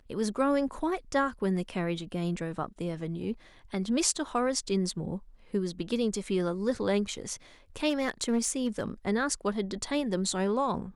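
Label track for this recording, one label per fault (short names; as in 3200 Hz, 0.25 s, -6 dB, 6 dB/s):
7.890000	8.830000	clipped -22 dBFS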